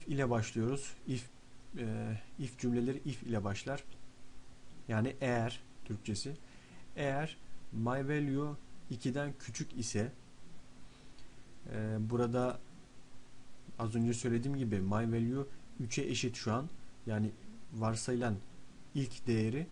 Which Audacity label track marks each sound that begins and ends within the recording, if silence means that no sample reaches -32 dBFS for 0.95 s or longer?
4.890000	10.070000	sound
11.760000	12.520000	sound